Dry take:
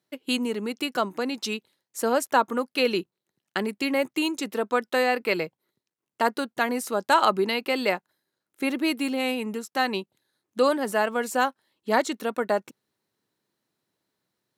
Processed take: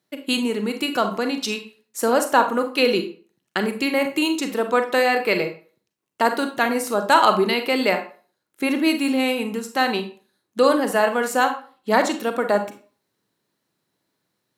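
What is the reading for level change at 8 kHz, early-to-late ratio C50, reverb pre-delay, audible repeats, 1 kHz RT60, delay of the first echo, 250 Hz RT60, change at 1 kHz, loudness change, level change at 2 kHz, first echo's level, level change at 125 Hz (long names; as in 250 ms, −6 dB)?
+4.5 dB, 10.0 dB, 32 ms, no echo audible, 0.40 s, no echo audible, 0.40 s, +5.0 dB, +5.0 dB, +5.0 dB, no echo audible, +6.0 dB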